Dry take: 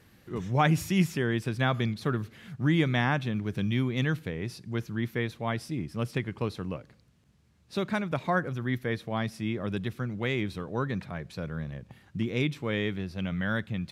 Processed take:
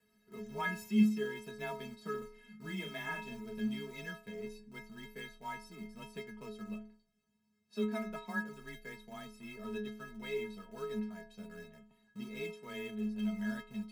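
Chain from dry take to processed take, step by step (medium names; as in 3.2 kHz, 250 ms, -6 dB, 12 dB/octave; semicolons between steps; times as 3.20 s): in parallel at -11.5 dB: bit crusher 5-bit; on the sum: inharmonic resonator 190 Hz, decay 0.57 s, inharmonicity 0.03; frequency shift +21 Hz; 2.18–3.59 s: doubling 37 ms -5.5 dB; trim +2.5 dB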